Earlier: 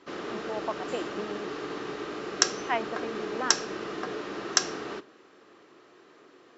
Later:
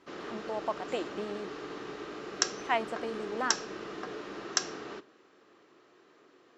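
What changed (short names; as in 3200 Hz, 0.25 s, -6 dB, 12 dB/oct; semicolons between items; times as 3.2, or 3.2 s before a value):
speech: remove LPF 3300 Hz 24 dB/oct; background -5.5 dB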